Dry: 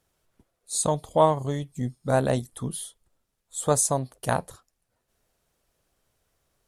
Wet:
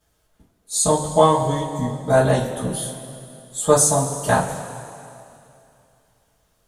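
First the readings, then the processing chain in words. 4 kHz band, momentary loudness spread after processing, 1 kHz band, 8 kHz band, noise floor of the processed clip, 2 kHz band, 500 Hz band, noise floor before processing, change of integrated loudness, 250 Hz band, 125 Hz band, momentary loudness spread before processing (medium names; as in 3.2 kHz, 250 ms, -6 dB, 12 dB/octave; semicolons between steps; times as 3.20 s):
+8.0 dB, 18 LU, +6.5 dB, +7.5 dB, -66 dBFS, +8.5 dB, +7.0 dB, -78 dBFS, +6.5 dB, +6.5 dB, +5.5 dB, 12 LU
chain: two-slope reverb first 0.24 s, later 2.7 s, from -17 dB, DRR -9 dB; trim -2.5 dB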